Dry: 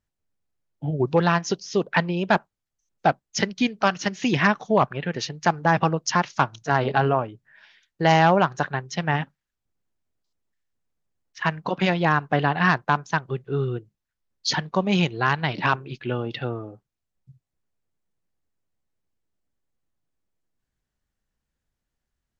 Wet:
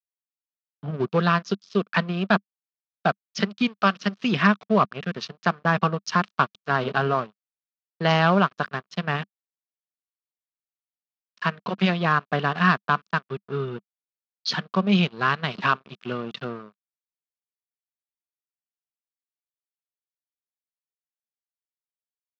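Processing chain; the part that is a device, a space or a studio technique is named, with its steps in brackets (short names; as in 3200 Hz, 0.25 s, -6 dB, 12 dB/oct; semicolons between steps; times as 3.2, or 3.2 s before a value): blown loudspeaker (crossover distortion -35.5 dBFS; speaker cabinet 170–4800 Hz, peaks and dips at 200 Hz +6 dB, 310 Hz -9 dB, 540 Hz -4 dB, 850 Hz -10 dB, 1200 Hz +5 dB, 2000 Hz -6 dB); gain +2 dB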